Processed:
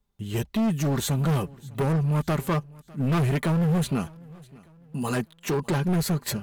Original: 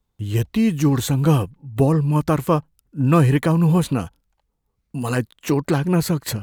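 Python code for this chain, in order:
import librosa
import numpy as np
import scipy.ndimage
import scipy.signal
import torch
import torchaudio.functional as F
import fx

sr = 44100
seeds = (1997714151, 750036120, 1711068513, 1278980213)

p1 = x + 0.51 * np.pad(x, (int(5.0 * sr / 1000.0), 0))[:len(x)]
p2 = np.clip(p1, -10.0 ** (-17.0 / 20.0), 10.0 ** (-17.0 / 20.0))
p3 = p2 + fx.echo_feedback(p2, sr, ms=602, feedback_pct=43, wet_db=-23.5, dry=0)
y = F.gain(torch.from_numpy(p3), -3.5).numpy()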